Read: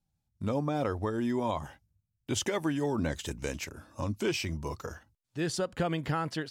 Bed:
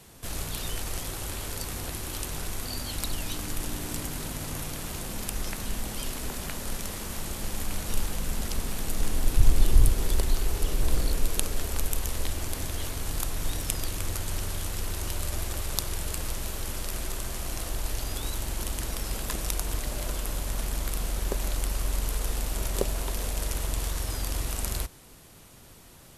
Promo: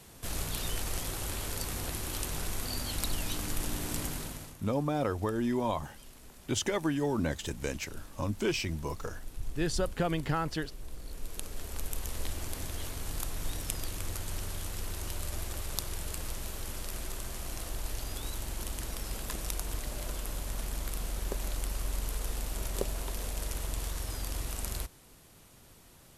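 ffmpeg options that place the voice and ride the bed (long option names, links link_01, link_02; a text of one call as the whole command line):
ffmpeg -i stem1.wav -i stem2.wav -filter_complex "[0:a]adelay=4200,volume=0dB[link_01];[1:a]volume=12dB,afade=type=out:start_time=4.07:duration=0.5:silence=0.133352,afade=type=in:start_time=10.99:duration=1.29:silence=0.211349[link_02];[link_01][link_02]amix=inputs=2:normalize=0" out.wav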